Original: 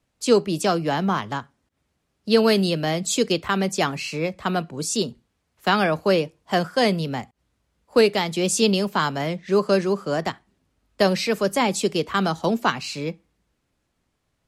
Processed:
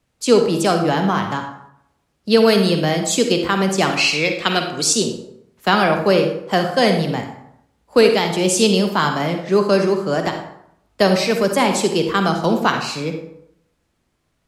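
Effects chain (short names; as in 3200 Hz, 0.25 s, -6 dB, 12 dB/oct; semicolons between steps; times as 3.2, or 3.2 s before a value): 3.9–4.93 weighting filter D; on a send: reverb RT60 0.70 s, pre-delay 37 ms, DRR 5 dB; on the sum: gain +3.5 dB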